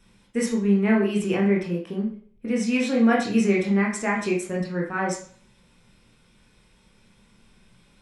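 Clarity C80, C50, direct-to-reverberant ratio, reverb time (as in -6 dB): 10.5 dB, 6.0 dB, -3.0 dB, 0.50 s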